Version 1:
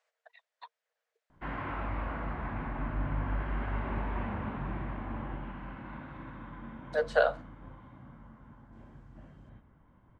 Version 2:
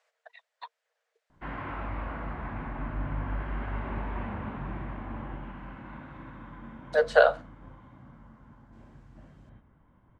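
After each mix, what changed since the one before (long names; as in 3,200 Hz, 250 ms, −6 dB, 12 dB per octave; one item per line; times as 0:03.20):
speech +6.0 dB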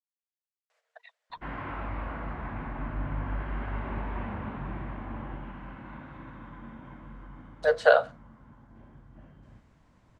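speech: entry +0.70 s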